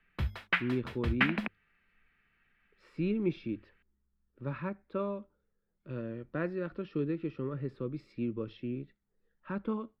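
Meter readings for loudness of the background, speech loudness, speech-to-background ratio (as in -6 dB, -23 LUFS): -33.0 LUFS, -37.0 LUFS, -4.0 dB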